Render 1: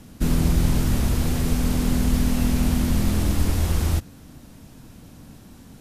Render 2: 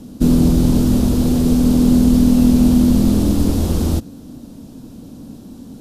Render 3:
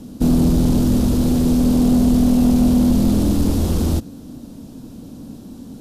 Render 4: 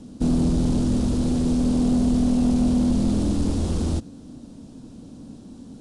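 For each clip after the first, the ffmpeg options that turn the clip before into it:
-af "equalizer=f=250:t=o:w=1:g=11,equalizer=f=500:t=o:w=1:g=5,equalizer=f=2k:t=o:w=1:g=-9,equalizer=f=4k:t=o:w=1:g=3,volume=2dB"
-af "asoftclip=type=tanh:threshold=-8dB"
-af "aresample=22050,aresample=44100,volume=-5.5dB"

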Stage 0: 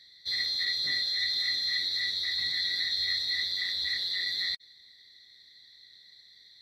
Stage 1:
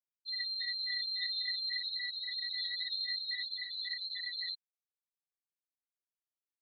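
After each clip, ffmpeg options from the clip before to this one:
-af "afftfilt=real='re*gte(hypot(re,im),0.112)':imag='im*gte(hypot(re,im),0.112)':win_size=1024:overlap=0.75,volume=-5dB"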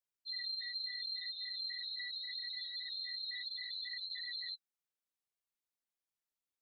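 -af "alimiter=level_in=12dB:limit=-24dB:level=0:latency=1:release=11,volume=-12dB,flanger=delay=1.8:depth=4.4:regen=-45:speed=0.74:shape=sinusoidal,volume=3.5dB"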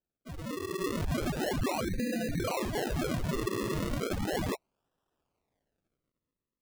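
-af "dynaudnorm=f=110:g=13:m=11dB,acrusher=samples=39:mix=1:aa=0.000001:lfo=1:lforange=39:lforate=0.35"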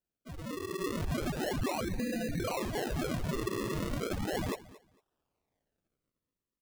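-af "aecho=1:1:226|452:0.112|0.0202,volume=-2dB"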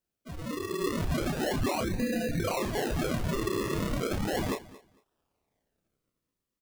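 -filter_complex "[0:a]asplit=2[a][b];[b]adelay=30,volume=-6.5dB[c];[a][c]amix=inputs=2:normalize=0,volume=3dB"

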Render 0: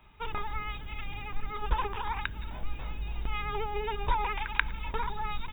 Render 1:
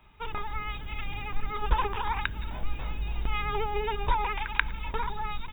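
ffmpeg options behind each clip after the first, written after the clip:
-af "dynaudnorm=f=470:g=3:m=3.5dB"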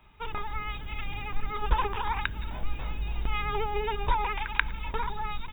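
-af anull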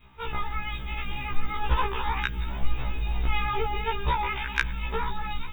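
-af "acontrast=57,adynamicequalizer=threshold=0.0112:dfrequency=830:dqfactor=1.3:tfrequency=830:tqfactor=1.3:attack=5:release=100:ratio=0.375:range=2.5:mode=cutabove:tftype=bell,afftfilt=real='re*1.73*eq(mod(b,3),0)':imag='im*1.73*eq(mod(b,3),0)':win_size=2048:overlap=0.75"

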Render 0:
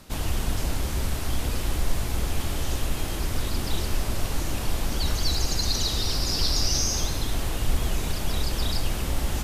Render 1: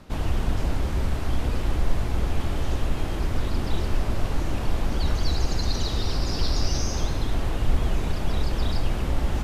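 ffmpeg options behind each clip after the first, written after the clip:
-af "lowpass=f=1.7k:p=1,volume=2.5dB"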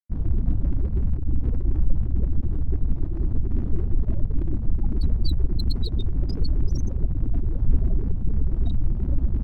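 -af "afftfilt=real='re*gte(hypot(re,im),0.112)':imag='im*gte(hypot(re,im),0.112)':win_size=1024:overlap=0.75,aeval=exprs='sgn(val(0))*max(abs(val(0))-0.00794,0)':c=same,volume=3dB"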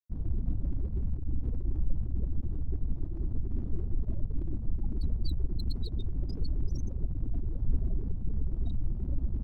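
-af "equalizer=f=1.8k:t=o:w=1.7:g=-6,volume=-8.5dB"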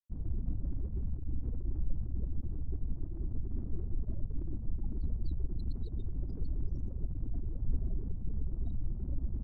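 -af "adynamicsmooth=sensitivity=4.5:basefreq=1.6k,volume=-4dB"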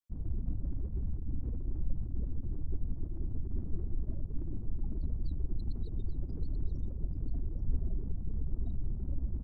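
-af "aecho=1:1:834:0.335"

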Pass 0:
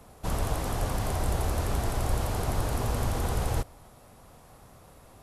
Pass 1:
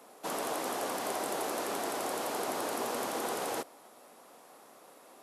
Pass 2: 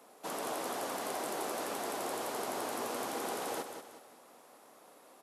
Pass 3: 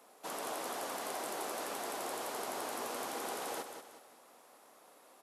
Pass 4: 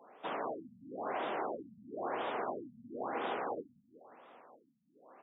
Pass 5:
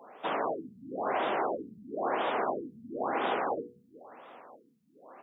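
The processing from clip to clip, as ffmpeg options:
-af "highpass=f=270:w=0.5412,highpass=f=270:w=1.3066"
-af "aecho=1:1:184|368|552|736|920:0.398|0.159|0.0637|0.0255|0.0102,volume=-3.5dB"
-af "lowshelf=f=440:g=-5.5,volume=-1dB"
-af "afftfilt=real='re*lt(b*sr/1024,230*pow(3800/230,0.5+0.5*sin(2*PI*0.99*pts/sr)))':imag='im*lt(b*sr/1024,230*pow(3800/230,0.5+0.5*sin(2*PI*0.99*pts/sr)))':win_size=1024:overlap=0.75,volume=4dB"
-af "bandreject=f=60:t=h:w=6,bandreject=f=120:t=h:w=6,bandreject=f=180:t=h:w=6,bandreject=f=240:t=h:w=6,bandreject=f=300:t=h:w=6,bandreject=f=360:t=h:w=6,bandreject=f=420:t=h:w=6,bandreject=f=480:t=h:w=6,volume=7dB"

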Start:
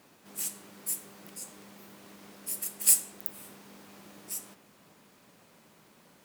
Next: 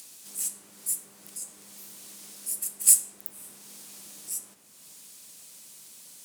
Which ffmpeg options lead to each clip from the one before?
-filter_complex "[0:a]equalizer=f=9.2k:t=o:w=1.4:g=11,acrossover=split=460|3100[a][b][c];[c]acompressor=mode=upward:threshold=-29dB:ratio=2.5[d];[a][b][d]amix=inputs=3:normalize=0,volume=-5.5dB"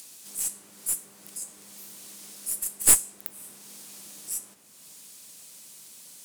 -af "aeval=exprs='(tanh(3.16*val(0)+0.55)-tanh(0.55))/3.16':c=same,volume=3.5dB"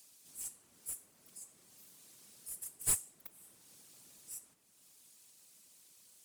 -af "afftfilt=real='hypot(re,im)*cos(2*PI*random(0))':imag='hypot(re,im)*sin(2*PI*random(1))':win_size=512:overlap=0.75,volume=-8.5dB"

